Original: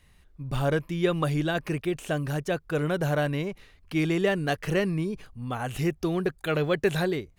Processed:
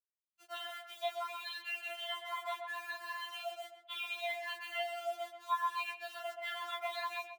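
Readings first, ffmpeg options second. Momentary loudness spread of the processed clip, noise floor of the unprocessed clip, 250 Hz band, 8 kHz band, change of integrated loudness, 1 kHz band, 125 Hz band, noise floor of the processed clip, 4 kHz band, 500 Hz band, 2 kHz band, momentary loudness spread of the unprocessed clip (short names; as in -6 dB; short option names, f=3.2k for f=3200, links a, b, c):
7 LU, -59 dBFS, under -40 dB, -10.5 dB, -12.0 dB, -3.5 dB, under -40 dB, under -85 dBFS, -3.0 dB, -16.5 dB, -7.5 dB, 8 LU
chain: -filter_complex "[0:a]afftfilt=real='re*pow(10,14/40*sin(2*PI*(1.4*log(max(b,1)*sr/1024/100)/log(2)-(0.7)*(pts-256)/sr)))':imag='im*pow(10,14/40*sin(2*PI*(1.4*log(max(b,1)*sr/1024/100)/log(2)-(0.7)*(pts-256)/sr)))':win_size=1024:overlap=0.75,agate=range=-24dB:threshold=-46dB:ratio=16:detection=peak,acrossover=split=580 2300:gain=0.0794 1 0.158[a][b][c];[a][b][c]amix=inputs=3:normalize=0,afftfilt=real='re*between(b*sr/4096,380,4300)':imag='im*between(b*sr/4096,380,4300)':win_size=4096:overlap=0.75,acompressor=threshold=-48dB:ratio=2,flanger=delay=19.5:depth=4.1:speed=1.8,aexciter=amount=2.7:drive=6.3:freq=2.6k,acrusher=bits=9:mix=0:aa=0.000001,afreqshift=290,asplit=2[d][e];[e]adelay=129,lowpass=f=1.4k:p=1,volume=-4dB,asplit=2[f][g];[g]adelay=129,lowpass=f=1.4k:p=1,volume=0.35,asplit=2[h][i];[i]adelay=129,lowpass=f=1.4k:p=1,volume=0.35,asplit=2[j][k];[k]adelay=129,lowpass=f=1.4k:p=1,volume=0.35[l];[d][f][h][j][l]amix=inputs=5:normalize=0,afftfilt=real='re*4*eq(mod(b,16),0)':imag='im*4*eq(mod(b,16),0)':win_size=2048:overlap=0.75,volume=8dB"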